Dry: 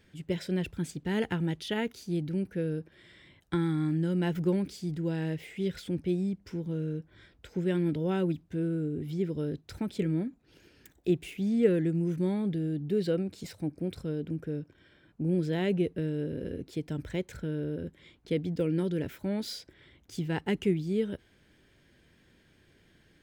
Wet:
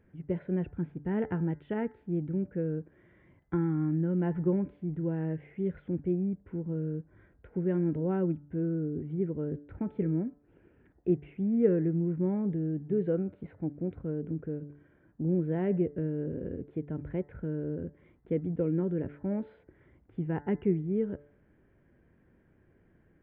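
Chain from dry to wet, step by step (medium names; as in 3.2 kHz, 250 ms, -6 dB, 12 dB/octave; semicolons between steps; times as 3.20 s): Gaussian low-pass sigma 5.2 samples; de-hum 145.3 Hz, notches 14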